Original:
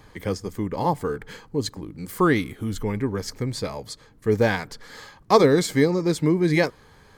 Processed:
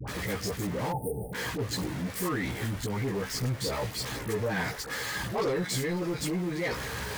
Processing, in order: jump at every zero crossing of -25 dBFS; high-pass 59 Hz; peaking EQ 1.9 kHz +5 dB 0.35 oct; in parallel at -1 dB: compressor with a negative ratio -24 dBFS, ratio -1; on the sum: chorus voices 4, 0.85 Hz, delay 16 ms, depth 1.2 ms; phase dispersion highs, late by 77 ms, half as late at 750 Hz; saturation -15 dBFS, distortion -13 dB; spectral selection erased 0.92–1.33 s, 890–8500 Hz; trim -9 dB

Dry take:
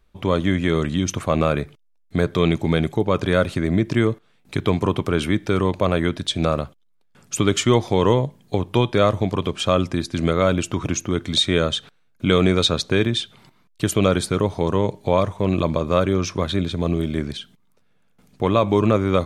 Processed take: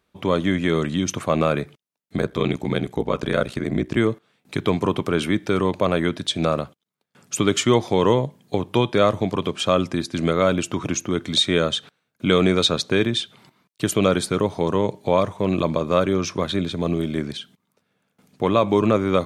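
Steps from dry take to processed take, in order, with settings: high-pass 130 Hz 12 dB/octave; 2.16–3.97 s: ring modulator 31 Hz

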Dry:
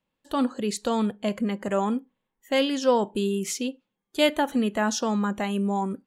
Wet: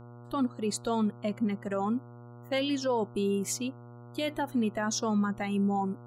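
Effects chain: expander on every frequency bin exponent 1.5; peak limiter -21 dBFS, peak gain reduction 12 dB; mains buzz 120 Hz, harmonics 12, -48 dBFS -6 dB/octave

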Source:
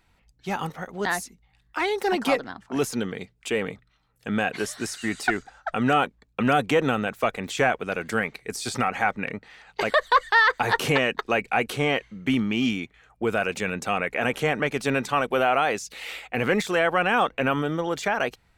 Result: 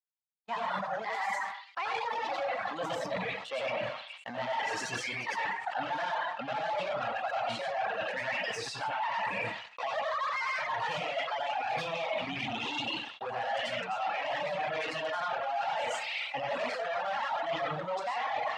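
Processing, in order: sawtooth pitch modulation +4 st, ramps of 761 ms; plate-style reverb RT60 0.65 s, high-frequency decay 0.95×, pre-delay 75 ms, DRR -6 dB; waveshaping leveller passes 5; high-pass 87 Hz 24 dB/octave; distance through air 160 m; band-stop 1.5 kHz, Q 18; on a send: repeats whose band climbs or falls 209 ms, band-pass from 1.3 kHz, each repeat 1.4 oct, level -8 dB; on the sum: reverb removal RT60 1.6 s; resonant low shelf 510 Hz -10 dB, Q 3; reverse; compression 6:1, threshold -24 dBFS, peak gain reduction 21.5 dB; reverse; gate -39 dBFS, range -34 dB; decay stretcher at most 74 dB/s; trim -8.5 dB

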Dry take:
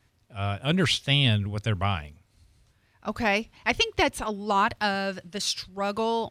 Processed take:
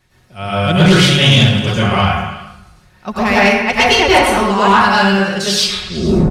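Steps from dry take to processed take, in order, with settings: tape stop on the ending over 0.88 s; comb 5.5 ms, depth 48%; plate-style reverb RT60 1 s, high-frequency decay 0.55×, pre-delay 85 ms, DRR -9 dB; saturation -8.5 dBFS, distortion -16 dB; on a send: repeats whose band climbs or falls 109 ms, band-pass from 1.4 kHz, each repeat 0.7 oct, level -9 dB; on the sum: trim +6 dB

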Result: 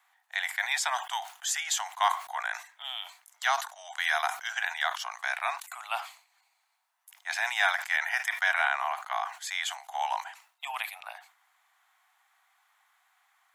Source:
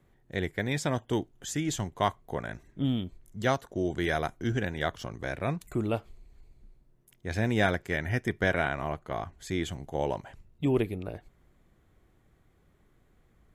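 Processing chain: steep high-pass 750 Hz 72 dB/octave; in parallel at +2.5 dB: peak limiter -24 dBFS, peak gain reduction 8 dB; on the sum: decay stretcher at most 130 dB/s

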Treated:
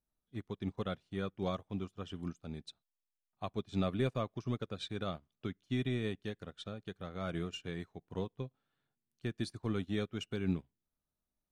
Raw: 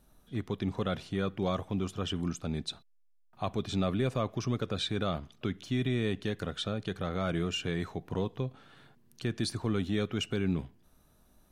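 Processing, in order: upward expansion 2.5:1, over -44 dBFS; trim -1.5 dB

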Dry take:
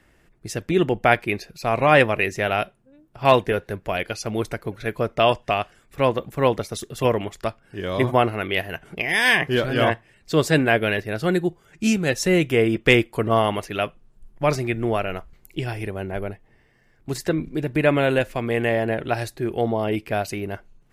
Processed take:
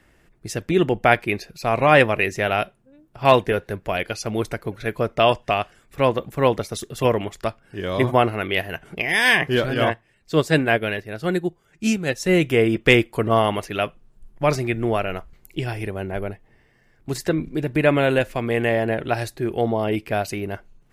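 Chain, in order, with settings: 9.74–12.29 s: upward expansion 1.5:1, over -28 dBFS; trim +1 dB

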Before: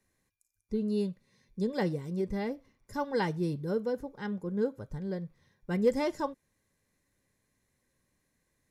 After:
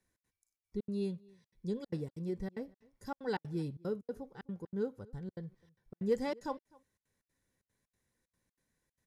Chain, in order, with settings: trance gate "xx.xxxx." 195 bpm -60 dB; echo from a far wall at 42 m, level -25 dB; speed mistake 25 fps video run at 24 fps; trim -5.5 dB

